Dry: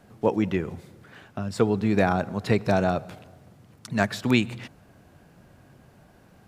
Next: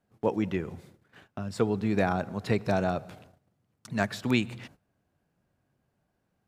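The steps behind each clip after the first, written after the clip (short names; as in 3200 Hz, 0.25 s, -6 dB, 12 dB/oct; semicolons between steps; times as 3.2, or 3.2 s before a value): gate -47 dBFS, range -17 dB; gain -4.5 dB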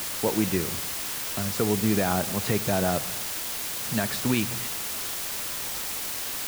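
limiter -18 dBFS, peak gain reduction 7.5 dB; requantised 6-bit, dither triangular; gain +4 dB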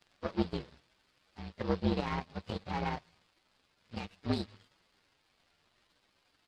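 inharmonic rescaling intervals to 123%; downsampling 11025 Hz; power-law curve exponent 2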